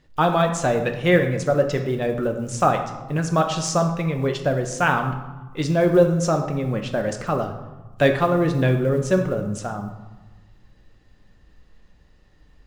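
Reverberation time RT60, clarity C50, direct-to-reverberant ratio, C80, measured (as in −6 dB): 1.2 s, 8.0 dB, 4.0 dB, 10.5 dB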